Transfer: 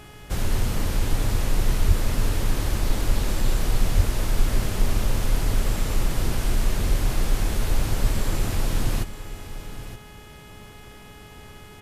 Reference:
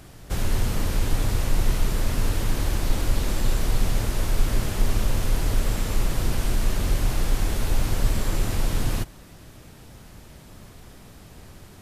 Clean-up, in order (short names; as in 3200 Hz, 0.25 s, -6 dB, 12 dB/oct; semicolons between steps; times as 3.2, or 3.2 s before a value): de-hum 419.8 Hz, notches 8; 1.87–1.99 HPF 140 Hz 24 dB/oct; 3.96–4.08 HPF 140 Hz 24 dB/oct; inverse comb 0.921 s -13 dB